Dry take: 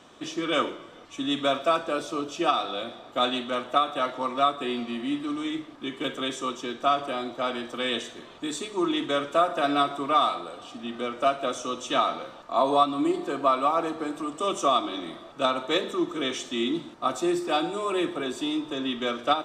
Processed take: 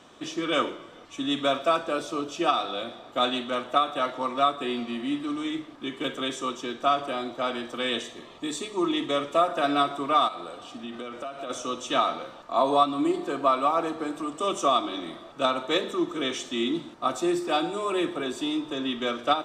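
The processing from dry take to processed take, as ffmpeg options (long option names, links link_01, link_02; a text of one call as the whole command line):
ffmpeg -i in.wav -filter_complex "[0:a]asettb=1/sr,asplit=3[link_01][link_02][link_03];[link_01]atrim=end=8.034[link_04];[link_02]atrim=start=8.03:end=9.48,asetpts=PTS-STARTPTS,afade=type=in:duration=0.004:curve=qsin,afade=type=out:start_time=1.446:duration=0.004:curve=qsin,asuperstop=centerf=1500:order=4:qfactor=7.2[link_05];[link_03]atrim=start=9.476[link_06];[link_04][link_05]acrossfade=duration=0.004:curve1=hsin:curve2=qsin[link_07];[link_07][link_06]acrossfade=duration=0.004:curve1=qsin:curve2=hsin,asplit=3[link_08][link_09][link_10];[link_08]afade=type=out:start_time=10.27:duration=0.02[link_11];[link_09]acompressor=threshold=-32dB:ratio=6:attack=3.2:release=140:knee=1:detection=peak,afade=type=in:start_time=10.27:duration=0.02,afade=type=out:start_time=11.49:duration=0.02[link_12];[link_10]afade=type=in:start_time=11.49:duration=0.02[link_13];[link_11][link_12][link_13]amix=inputs=3:normalize=0" out.wav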